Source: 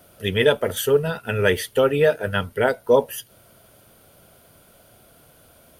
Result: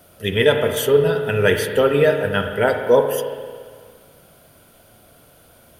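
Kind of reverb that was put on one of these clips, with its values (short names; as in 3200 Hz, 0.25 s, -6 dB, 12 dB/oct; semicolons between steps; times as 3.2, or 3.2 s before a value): spring tank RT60 1.8 s, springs 35/56 ms, chirp 35 ms, DRR 5 dB; gain +1.5 dB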